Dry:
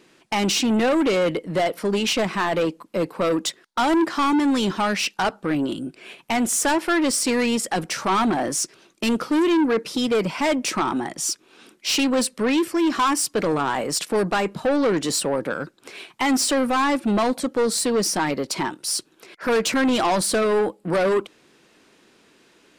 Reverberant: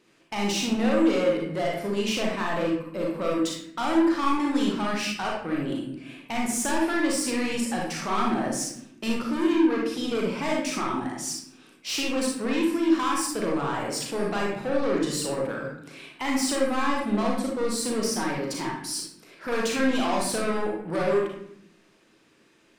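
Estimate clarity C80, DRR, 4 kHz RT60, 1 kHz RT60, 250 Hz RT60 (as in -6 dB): 6.0 dB, -2.5 dB, 0.50 s, 0.65 s, 1.2 s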